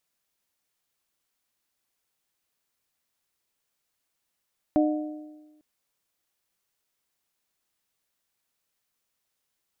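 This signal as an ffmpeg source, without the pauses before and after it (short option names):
-f lavfi -i "aevalsrc='0.133*pow(10,-3*t/1.25)*sin(2*PI*304*t)+0.075*pow(10,-3*t/1.015)*sin(2*PI*608*t)+0.0422*pow(10,-3*t/0.961)*sin(2*PI*729.6*t)':d=0.85:s=44100"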